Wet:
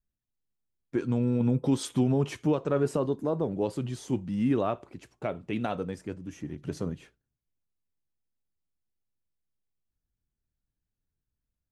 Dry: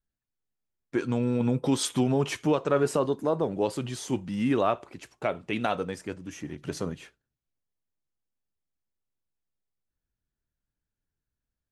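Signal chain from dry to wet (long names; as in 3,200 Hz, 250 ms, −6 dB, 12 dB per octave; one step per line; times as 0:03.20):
low-shelf EQ 460 Hz +10 dB
level −7.5 dB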